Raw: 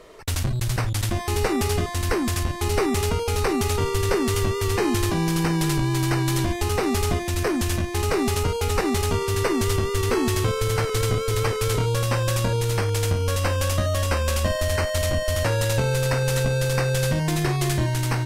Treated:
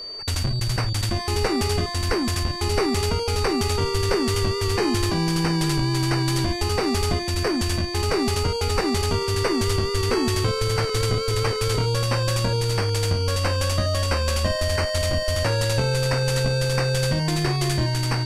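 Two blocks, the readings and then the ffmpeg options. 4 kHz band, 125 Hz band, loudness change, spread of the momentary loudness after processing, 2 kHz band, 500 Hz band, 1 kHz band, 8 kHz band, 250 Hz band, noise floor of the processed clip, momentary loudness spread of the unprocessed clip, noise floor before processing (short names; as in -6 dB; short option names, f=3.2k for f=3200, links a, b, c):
+4.5 dB, 0.0 dB, +0.5 dB, 2 LU, 0.0 dB, 0.0 dB, 0.0 dB, -1.0 dB, 0.0 dB, -27 dBFS, 2 LU, -27 dBFS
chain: -af "lowpass=11k,aeval=exprs='val(0)+0.0251*sin(2*PI*4600*n/s)':c=same"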